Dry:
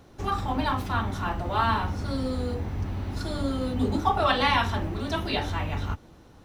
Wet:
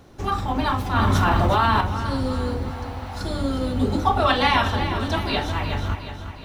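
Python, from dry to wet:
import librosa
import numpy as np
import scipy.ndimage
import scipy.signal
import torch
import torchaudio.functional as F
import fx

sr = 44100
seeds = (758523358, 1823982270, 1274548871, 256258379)

y = fx.low_shelf_res(x, sr, hz=560.0, db=-9.5, q=3.0, at=(2.71, 3.21))
y = fx.echo_feedback(y, sr, ms=362, feedback_pct=53, wet_db=-10.0)
y = fx.env_flatten(y, sr, amount_pct=100, at=(0.96, 1.81))
y = y * librosa.db_to_amplitude(3.5)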